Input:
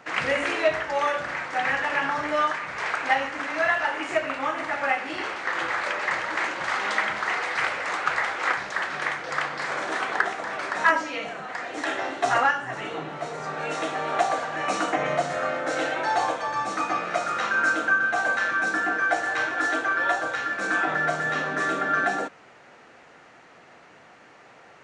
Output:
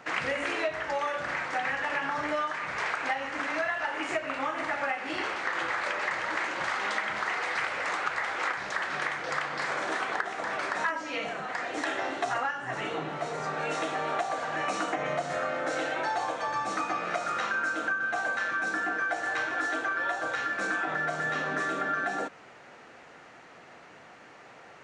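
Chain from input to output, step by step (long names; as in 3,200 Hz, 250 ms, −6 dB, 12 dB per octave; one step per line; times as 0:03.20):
downward compressor, threshold −27 dBFS, peak gain reduction 12 dB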